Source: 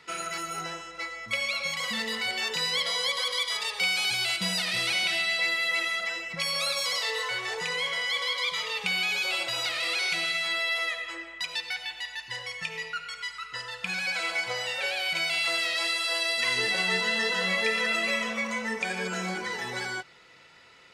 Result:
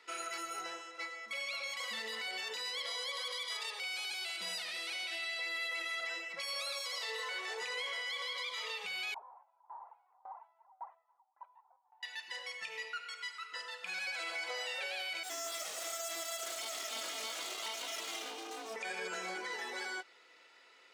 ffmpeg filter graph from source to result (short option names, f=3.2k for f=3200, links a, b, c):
-filter_complex "[0:a]asettb=1/sr,asplit=3[a][b][c];[a]atrim=end=9.144[d];[b]atrim=start=9.14:end=12.03,asetpts=PTS-STARTPTS,afade=t=in:d=0.004:c=qsin,afade=t=out:st=2.886:d=0.004:c=qsin,acrusher=samples=11:mix=1:aa=0.000001:lfo=1:lforange=11:lforate=2,asuperpass=centerf=880:order=4:qfactor=3.9,aeval=exprs='val(0)*pow(10,-26*if(lt(mod(1.8*n/s,1),2*abs(1.8)/1000),1-mod(1.8*n/s,1)/(2*abs(1.8)/1000),(mod(1.8*n/s,1)-2*abs(1.8)/1000)/(1-2*abs(1.8)/1000))/20)':c=same[e];[c]atrim=start=12.026[f];[d][e]acrossfade=d=0.004:c1=hsin:c2=qsin[g];[g][f]acrossfade=d=0.004:c1=qsin:c2=hsin,asettb=1/sr,asplit=3[h][i][j];[h]atrim=end=15.234[k];[i]atrim=start=15.23:end=18.76,asetpts=PTS-STARTPTS,afade=t=in:d=0.004:c=qsin,afade=t=out:st=3.526:d=0.004:c=qsin,asuperstop=centerf=1600:order=20:qfactor=1.1,asplit=2[l][m];[m]adelay=36,volume=-8dB[n];[l][n]amix=inputs=2:normalize=0,atrim=end_sample=155673,aeval=exprs='abs(val(0))':c=same[o];[j]atrim=start=18.756[p];[k][o]acrossfade=d=0.004:c1=hsin:c2=qsin[q];[q][p]acrossfade=d=0.004:c1=qsin:c2=hsin,highpass=f=300:w=0.5412,highpass=f=300:w=1.3066,alimiter=limit=-23.5dB:level=0:latency=1:release=35,volume=-7dB"